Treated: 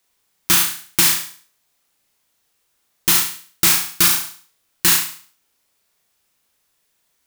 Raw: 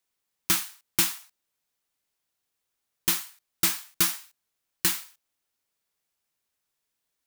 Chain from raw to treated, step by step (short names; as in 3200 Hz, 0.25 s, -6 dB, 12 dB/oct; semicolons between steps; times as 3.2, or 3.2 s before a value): flutter echo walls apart 6 m, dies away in 0.45 s; maximiser +13 dB; gain -1 dB